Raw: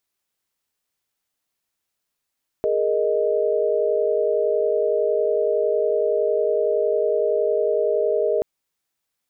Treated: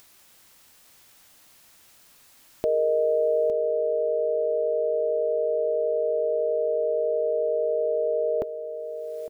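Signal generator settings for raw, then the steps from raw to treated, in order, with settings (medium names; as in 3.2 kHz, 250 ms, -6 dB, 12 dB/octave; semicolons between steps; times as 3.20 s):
chord G#4/A#4/D#5 sine, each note -22 dBFS 5.78 s
band-stop 410 Hz, Q 12; upward compressor, threshold -35 dBFS; delay 859 ms -11.5 dB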